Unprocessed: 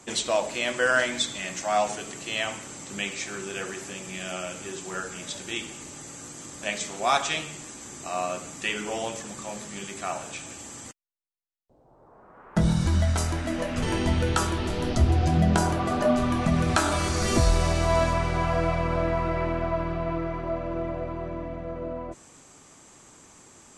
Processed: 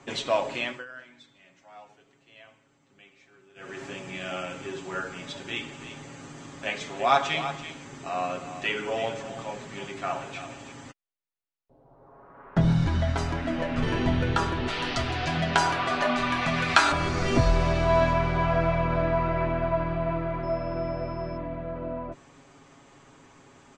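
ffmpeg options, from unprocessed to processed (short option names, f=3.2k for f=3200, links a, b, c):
-filter_complex "[0:a]asettb=1/sr,asplit=3[a][b][c];[a]atrim=end=5.434[d];[b]atrim=start=5.43:end=10.73,asetpts=PTS-STARTPTS,afade=t=in:d=0.004:c=qsin,afade=t=out:st=5.296:d=0.004:c=qsin,aecho=1:1:333:0.266,atrim=end_sample=233730[e];[c]atrim=start=10.726[f];[d][e]acrossfade=d=0.004:c1=hsin:c2=qsin[g];[g][f]acrossfade=d=0.004:c1=qsin:c2=hsin,asettb=1/sr,asplit=3[h][i][j];[h]atrim=end=14.684[k];[i]atrim=start=14.68:end=16.92,asetpts=PTS-STARTPTS,afade=t=in:d=0.004:c=qsin,afade=t=out:st=2.236:d=0.004:c=qsin,tiltshelf=f=710:g=-10[l];[j]atrim=start=16.916[m];[k][l]acrossfade=d=0.004:c1=hsin:c2=qsin[n];[n][m]acrossfade=d=0.004:c1=qsin:c2=hsin,asettb=1/sr,asplit=3[o][p][q];[o]atrim=end=20.434[r];[p]atrim=start=20.43:end=21.37,asetpts=PTS-STARTPTS,afade=t=in:d=0.004:c=qsin,afade=t=out:st=0.936:d=0.004:c=qsin,aeval=exprs='val(0)+0.00316*sin(2*PI*5200*n/s)':c=same[s];[q]atrim=start=21.366[t];[r][s]acrossfade=d=0.004:c1=hsin:c2=qsin[u];[u][t]acrossfade=d=0.004:c1=qsin:c2=hsin,asplit=3[v][w][x];[v]atrim=end=0.85,asetpts=PTS-STARTPTS,afade=t=out:st=0.56:d=0.29:silence=0.0668344[y];[w]atrim=start=0.85:end=3.55,asetpts=PTS-STARTPTS,volume=-23.5dB[z];[x]atrim=start=3.55,asetpts=PTS-STARTPTS,afade=t=in:d=0.29:silence=0.0668344[aa];[y][z][aa]concat=n=3:v=0:a=1,lowpass=3.4k,aecho=1:1:7.3:0.55"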